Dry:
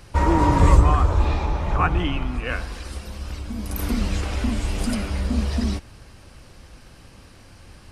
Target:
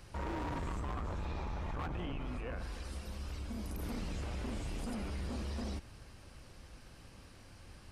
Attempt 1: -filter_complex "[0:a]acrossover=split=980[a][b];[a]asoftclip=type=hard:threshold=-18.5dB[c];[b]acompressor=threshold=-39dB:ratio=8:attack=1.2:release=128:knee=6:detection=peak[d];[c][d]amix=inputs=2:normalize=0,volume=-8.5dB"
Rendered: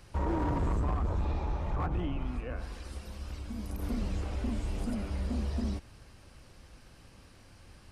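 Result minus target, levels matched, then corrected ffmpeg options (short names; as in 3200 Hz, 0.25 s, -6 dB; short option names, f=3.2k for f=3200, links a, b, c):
hard clip: distortion -5 dB
-filter_complex "[0:a]acrossover=split=980[a][b];[a]asoftclip=type=hard:threshold=-29dB[c];[b]acompressor=threshold=-39dB:ratio=8:attack=1.2:release=128:knee=6:detection=peak[d];[c][d]amix=inputs=2:normalize=0,volume=-8.5dB"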